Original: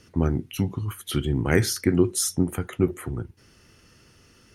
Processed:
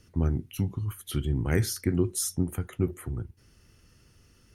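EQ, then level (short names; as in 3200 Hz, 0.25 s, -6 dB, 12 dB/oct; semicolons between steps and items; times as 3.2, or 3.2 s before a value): low shelf 77 Hz +6.5 dB; low shelf 160 Hz +6.5 dB; high shelf 9200 Hz +8.5 dB; -8.5 dB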